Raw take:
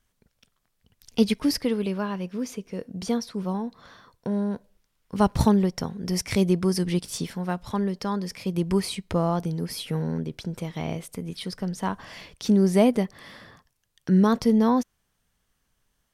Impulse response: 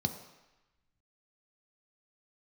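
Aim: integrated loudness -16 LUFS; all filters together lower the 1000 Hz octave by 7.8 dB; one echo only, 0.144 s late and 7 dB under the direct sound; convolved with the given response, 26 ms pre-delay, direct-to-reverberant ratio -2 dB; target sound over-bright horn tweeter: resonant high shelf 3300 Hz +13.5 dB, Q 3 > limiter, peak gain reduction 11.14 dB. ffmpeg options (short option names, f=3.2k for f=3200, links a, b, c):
-filter_complex "[0:a]equalizer=f=1k:t=o:g=-8.5,aecho=1:1:144:0.447,asplit=2[a][b];[1:a]atrim=start_sample=2205,adelay=26[c];[b][c]afir=irnorm=-1:irlink=0,volume=-2dB[d];[a][d]amix=inputs=2:normalize=0,highshelf=f=3.3k:t=q:w=3:g=13.5,volume=-2.5dB,alimiter=limit=-5.5dB:level=0:latency=1"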